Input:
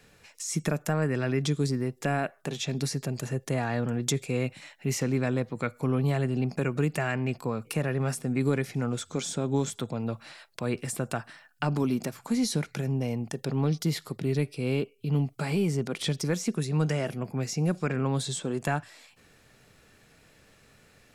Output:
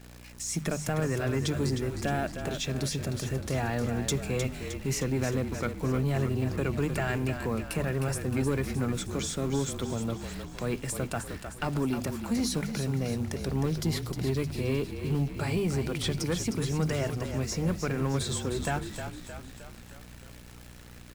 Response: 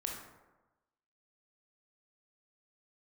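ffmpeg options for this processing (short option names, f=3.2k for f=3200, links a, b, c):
-filter_complex "[0:a]bandreject=f=50:t=h:w=6,bandreject=f=100:t=h:w=6,bandreject=f=150:t=h:w=6,bandreject=f=200:t=h:w=6,bandreject=f=250:t=h:w=6,aeval=exprs='val(0)+0.00355*(sin(2*PI*60*n/s)+sin(2*PI*2*60*n/s)/2+sin(2*PI*3*60*n/s)/3+sin(2*PI*4*60*n/s)/4+sin(2*PI*5*60*n/s)/5)':c=same,acrusher=bits=9:dc=4:mix=0:aa=0.000001,asoftclip=type=tanh:threshold=-20dB,asplit=2[a][b];[b]asplit=7[c][d][e][f][g][h][i];[c]adelay=309,afreqshift=-37,volume=-8dB[j];[d]adelay=618,afreqshift=-74,volume=-13.2dB[k];[e]adelay=927,afreqshift=-111,volume=-18.4dB[l];[f]adelay=1236,afreqshift=-148,volume=-23.6dB[m];[g]adelay=1545,afreqshift=-185,volume=-28.8dB[n];[h]adelay=1854,afreqshift=-222,volume=-34dB[o];[i]adelay=2163,afreqshift=-259,volume=-39.2dB[p];[j][k][l][m][n][o][p]amix=inputs=7:normalize=0[q];[a][q]amix=inputs=2:normalize=0"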